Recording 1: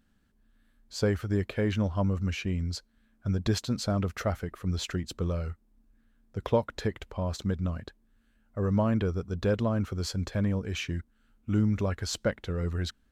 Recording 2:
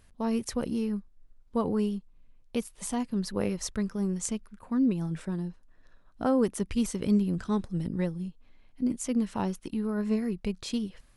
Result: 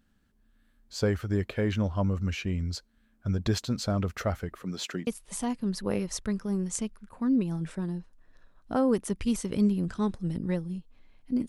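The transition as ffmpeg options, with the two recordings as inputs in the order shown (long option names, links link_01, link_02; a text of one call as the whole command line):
ffmpeg -i cue0.wav -i cue1.wav -filter_complex "[0:a]asettb=1/sr,asplit=3[link_01][link_02][link_03];[link_01]atrim=end=4.634[link_04];[link_02]atrim=start=4.63:end=5.07,asetpts=PTS-STARTPTS,afade=type=in:duration=0.004:curve=qsin,afade=type=out:start_time=0.436:duration=0.004:curve=qsin,highpass=frequency=170:width=0.5412,highpass=frequency=170:width=1.3066[link_05];[link_03]atrim=start=5.066[link_06];[link_04][link_05]acrossfade=duration=0.004:curve1=hsin:curve2=qsin[link_07];[link_07][link_06]acrossfade=duration=0.004:curve1=qsin:curve2=hsin,apad=whole_dur=11.48,atrim=end=11.48,atrim=end=5.072[link_08];[1:a]atrim=start=2.568:end=8.98[link_09];[link_08][link_09]acrossfade=duration=0.004:curve1=hsin:curve2=hsin" out.wav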